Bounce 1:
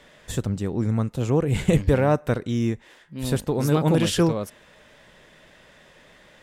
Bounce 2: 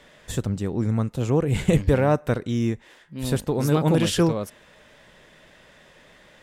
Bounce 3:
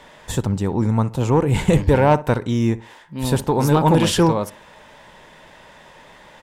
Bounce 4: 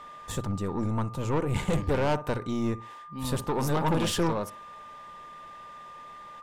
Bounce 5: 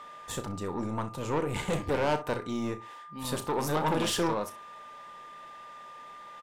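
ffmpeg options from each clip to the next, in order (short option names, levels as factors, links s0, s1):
-af anull
-filter_complex "[0:a]equalizer=f=910:w=3.5:g=11.5,acontrast=89,asplit=2[s0][s1];[s1]adelay=61,lowpass=f=1800:p=1,volume=0.15,asplit=2[s2][s3];[s3]adelay=61,lowpass=f=1800:p=1,volume=0.29,asplit=2[s4][s5];[s5]adelay=61,lowpass=f=1800:p=1,volume=0.29[s6];[s0][s2][s4][s6]amix=inputs=4:normalize=0,volume=0.75"
-af "aeval=exprs='(tanh(5.62*val(0)+0.45)-tanh(0.45))/5.62':c=same,aeval=exprs='val(0)+0.0141*sin(2*PI*1200*n/s)':c=same,bandreject=f=60:t=h:w=6,bandreject=f=120:t=h:w=6,volume=0.501"
-filter_complex "[0:a]lowshelf=f=180:g=-10.5,asplit=2[s0][s1];[s1]aecho=0:1:33|64:0.282|0.141[s2];[s0][s2]amix=inputs=2:normalize=0"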